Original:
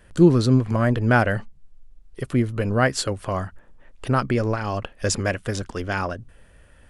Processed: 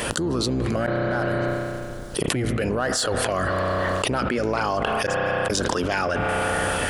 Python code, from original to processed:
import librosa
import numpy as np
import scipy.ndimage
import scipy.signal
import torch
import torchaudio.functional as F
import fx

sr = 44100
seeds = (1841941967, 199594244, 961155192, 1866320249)

p1 = fx.octave_divider(x, sr, octaves=1, level_db=-1.0)
p2 = fx.highpass(p1, sr, hz=540.0, slope=6)
p3 = 10.0 ** (-21.0 / 20.0) * np.tanh(p2 / 10.0 ** (-21.0 / 20.0))
p4 = p2 + F.gain(torch.from_numpy(p3), -4.0).numpy()
p5 = fx.gate_flip(p4, sr, shuts_db=-21.0, range_db=-37, at=(5.06, 5.5))
p6 = fx.filter_lfo_notch(p5, sr, shape='sine', hz=1.1, low_hz=880.0, high_hz=2500.0, q=2.5)
p7 = fx.gate_flip(p6, sr, shuts_db=-19.0, range_db=-30, at=(0.86, 2.28))
p8 = fx.rev_spring(p7, sr, rt60_s=2.2, pass_ms=(32,), chirp_ms=70, drr_db=14.5)
p9 = fx.env_flatten(p8, sr, amount_pct=100)
y = F.gain(torch.from_numpy(p9), -10.0).numpy()